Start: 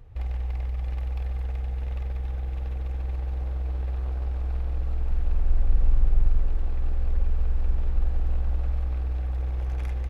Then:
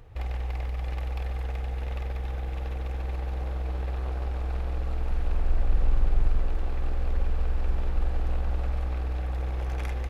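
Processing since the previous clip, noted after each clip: low shelf 180 Hz -9 dB; gain +6 dB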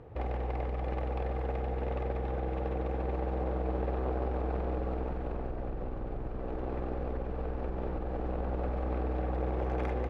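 compressor 6:1, threshold -24 dBFS, peak gain reduction 8.5 dB; band-pass 380 Hz, Q 0.76; gain +9 dB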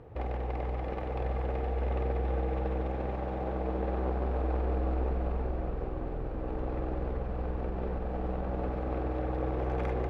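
diffused feedback echo 0.453 s, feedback 65%, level -7.5 dB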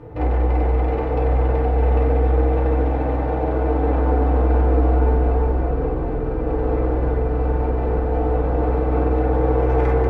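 FDN reverb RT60 0.57 s, low-frequency decay 1.4×, high-frequency decay 0.3×, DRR -5.5 dB; gain +4.5 dB

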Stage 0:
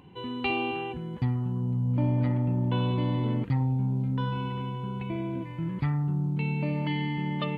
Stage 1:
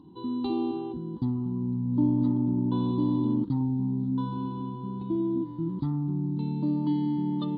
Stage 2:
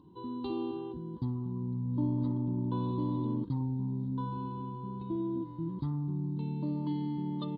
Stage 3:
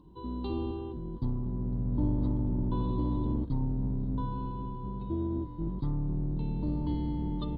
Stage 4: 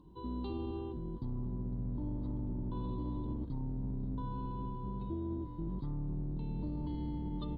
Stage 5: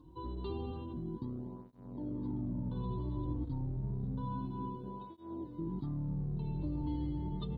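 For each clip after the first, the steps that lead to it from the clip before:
EQ curve 130 Hz 0 dB, 320 Hz +14 dB, 460 Hz -4 dB, 660 Hz -8 dB, 960 Hz +4 dB, 2400 Hz -28 dB, 3800 Hz +7 dB, 6500 Hz -13 dB; gain -5 dB
comb 1.9 ms, depth 41%; gain -4 dB
octaver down 2 oct, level +1 dB
limiter -28.5 dBFS, peak gain reduction 10 dB; gain -2.5 dB
tape flanging out of phase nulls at 0.29 Hz, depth 5.1 ms; gain +3.5 dB

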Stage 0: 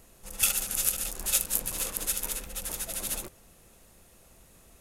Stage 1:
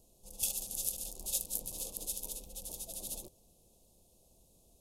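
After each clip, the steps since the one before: Chebyshev band-stop 700–3900 Hz, order 2; gain -8 dB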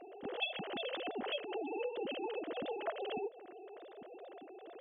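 sine-wave speech; compressor 3:1, threshold -46 dBFS, peak gain reduction 14 dB; gain +7.5 dB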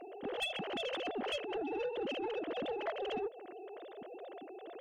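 soft clip -34 dBFS, distortion -16 dB; gain +3.5 dB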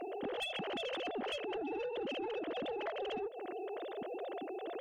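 in parallel at 0 dB: limiter -38 dBFS, peak gain reduction 7.5 dB; on the sum: compressor, threshold -38 dBFS, peak gain reduction 8 dB; gain +1 dB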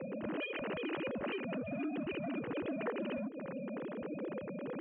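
mistuned SSB -190 Hz 420–2700 Hz; gain +3 dB

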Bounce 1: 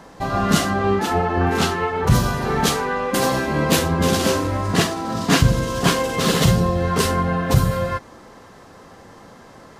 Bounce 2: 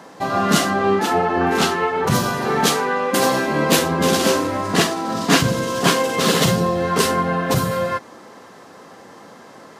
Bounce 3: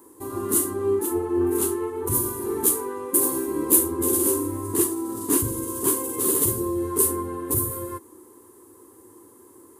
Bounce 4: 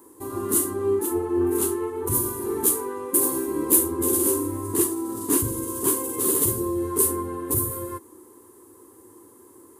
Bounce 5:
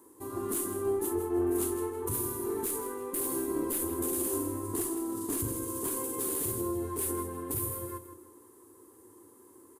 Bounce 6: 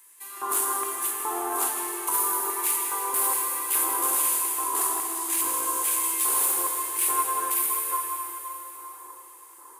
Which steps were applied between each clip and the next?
HPF 190 Hz 12 dB/oct; gain +2.5 dB
EQ curve 100 Hz 0 dB, 170 Hz -24 dB, 350 Hz +4 dB, 680 Hz -28 dB, 990 Hz -9 dB, 1400 Hz -21 dB, 2500 Hz -22 dB, 5400 Hz -19 dB, 9600 Hz +11 dB; gain -1 dB
soft clip -3 dBFS, distortion -31 dB
tube stage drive 8 dB, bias 0.7; limiter -19 dBFS, peak gain reduction 11.5 dB; feedback echo 0.16 s, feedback 32%, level -11 dB; gain -2.5 dB
LFO high-pass square 1.2 Hz 940–2300 Hz; plate-style reverb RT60 4.2 s, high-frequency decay 0.9×, DRR 0.5 dB; gain +8 dB

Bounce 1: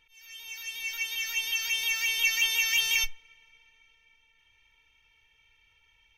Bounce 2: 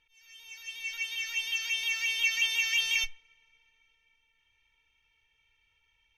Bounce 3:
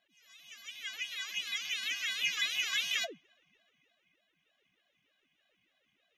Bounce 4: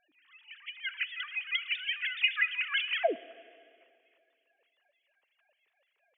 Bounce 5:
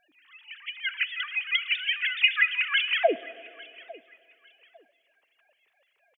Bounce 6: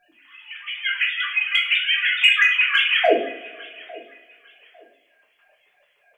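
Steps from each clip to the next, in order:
LPF 10000 Hz 12 dB/oct; dynamic EQ 2700 Hz, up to +5 dB, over -39 dBFS, Q 0.77; gain -6.5 dB
ring modulator with a swept carrier 430 Hz, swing 65%, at 3.3 Hz; gain -2 dB
sine-wave speech; plate-style reverb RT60 2.3 s, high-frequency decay 0.95×, DRR 17.5 dB; gain +3 dB
feedback echo 0.852 s, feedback 27%, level -22 dB; gain +6 dB
in parallel at -8.5 dB: hard clip -16 dBFS, distortion -15 dB; on the sum: shoebox room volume 50 m³, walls mixed, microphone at 0.96 m

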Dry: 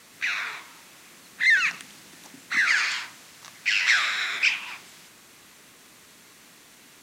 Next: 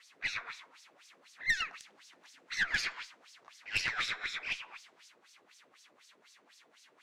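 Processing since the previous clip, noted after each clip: LFO band-pass sine 4 Hz 440–5700 Hz; tube stage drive 22 dB, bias 0.5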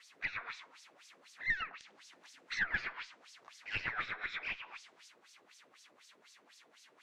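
treble ducked by the level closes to 1800 Hz, closed at -32.5 dBFS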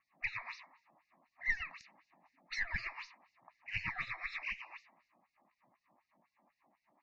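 bin magnitudes rounded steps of 30 dB; fixed phaser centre 2200 Hz, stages 8; low-pass opened by the level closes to 670 Hz, open at -40.5 dBFS; gain +2 dB

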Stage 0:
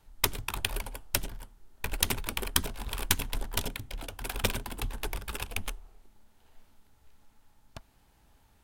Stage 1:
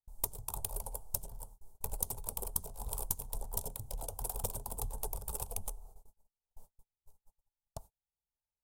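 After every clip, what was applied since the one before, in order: gate -51 dBFS, range -39 dB; EQ curve 160 Hz 0 dB, 310 Hz -13 dB, 440 Hz +2 dB, 900 Hz +2 dB, 1700 Hz -22 dB, 2700 Hz -19 dB, 8400 Hz +7 dB; compressor 3:1, threshold -37 dBFS, peak gain reduction 16 dB; gain +1 dB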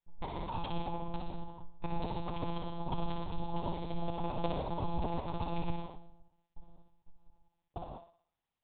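thinning echo 60 ms, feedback 49%, high-pass 400 Hz, level -4.5 dB; non-linear reverb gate 0.22 s flat, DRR -0.5 dB; monotone LPC vocoder at 8 kHz 170 Hz; gain +3.5 dB

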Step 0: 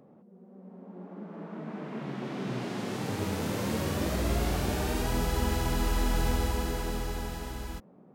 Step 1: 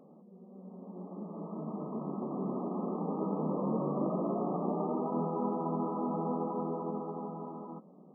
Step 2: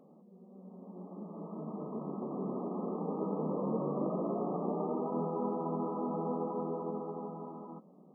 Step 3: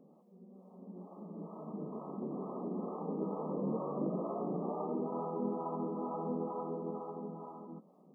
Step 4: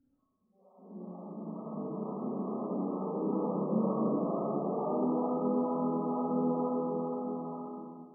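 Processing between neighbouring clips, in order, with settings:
FFT band-pass 140–1300 Hz
dynamic EQ 460 Hz, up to +4 dB, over -47 dBFS, Q 3.6; gain -2.5 dB
harmonic tremolo 2.2 Hz, crossover 510 Hz; gain +1 dB
gate with hold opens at -54 dBFS; spectral noise reduction 26 dB; Schroeder reverb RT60 1.6 s, combs from 28 ms, DRR -8 dB; gain -3.5 dB

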